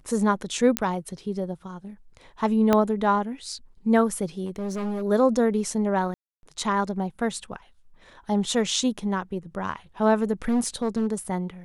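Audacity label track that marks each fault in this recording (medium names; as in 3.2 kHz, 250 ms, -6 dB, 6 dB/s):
0.770000	0.770000	pop -5 dBFS
2.730000	2.730000	pop -7 dBFS
4.450000	5.030000	clipped -26 dBFS
6.140000	6.430000	dropout 291 ms
10.480000	11.070000	clipped -19 dBFS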